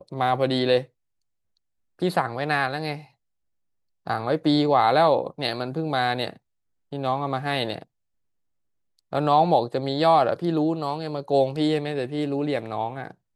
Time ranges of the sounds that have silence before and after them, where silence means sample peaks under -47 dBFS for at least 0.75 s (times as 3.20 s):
1.99–3.08 s
4.06–7.83 s